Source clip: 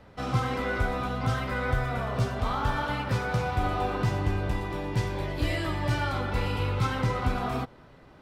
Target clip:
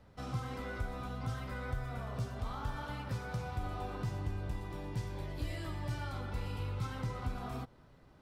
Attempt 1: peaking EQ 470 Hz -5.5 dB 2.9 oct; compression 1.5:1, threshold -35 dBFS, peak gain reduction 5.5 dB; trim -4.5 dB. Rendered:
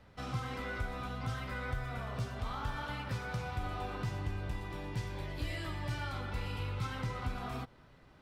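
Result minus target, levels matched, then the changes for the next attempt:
2 kHz band +3.5 dB
add after compression: peaking EQ 2.4 kHz -6 dB 2 oct

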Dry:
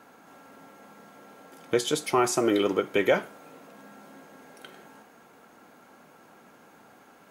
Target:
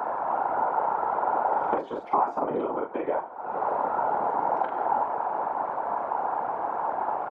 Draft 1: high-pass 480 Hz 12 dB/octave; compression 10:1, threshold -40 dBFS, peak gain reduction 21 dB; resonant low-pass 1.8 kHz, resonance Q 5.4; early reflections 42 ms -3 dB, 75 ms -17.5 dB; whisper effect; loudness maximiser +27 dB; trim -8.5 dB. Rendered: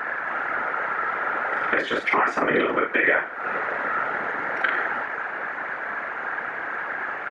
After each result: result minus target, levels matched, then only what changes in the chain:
2 kHz band +16.5 dB; compression: peak gain reduction -7.5 dB
change: resonant low-pass 880 Hz, resonance Q 5.4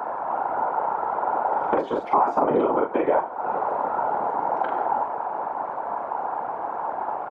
compression: peak gain reduction -7.5 dB
change: compression 10:1, threshold -48.5 dBFS, peak gain reduction 28.5 dB

